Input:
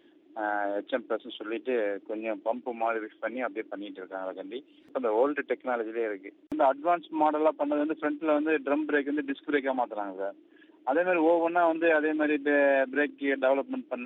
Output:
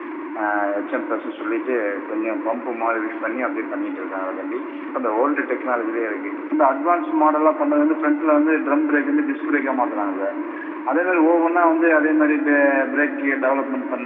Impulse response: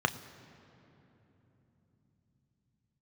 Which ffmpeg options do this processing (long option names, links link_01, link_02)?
-filter_complex "[0:a]aeval=exprs='val(0)+0.5*0.0224*sgn(val(0))':channel_layout=same,highpass=frequency=280:width=0.5412,highpass=frequency=280:width=1.3066,equalizer=frequency=300:width_type=q:width=4:gain=10,equalizer=frequency=450:width_type=q:width=4:gain=-5,equalizer=frequency=780:width_type=q:width=4:gain=-6,equalizer=frequency=1100:width_type=q:width=4:gain=8,equalizer=frequency=1900:width_type=q:width=4:gain=7,lowpass=frequency=2400:width=0.5412,lowpass=frequency=2400:width=1.3066[link_01];[1:a]atrim=start_sample=2205,asetrate=35721,aresample=44100[link_02];[link_01][link_02]afir=irnorm=-1:irlink=0,volume=-5.5dB"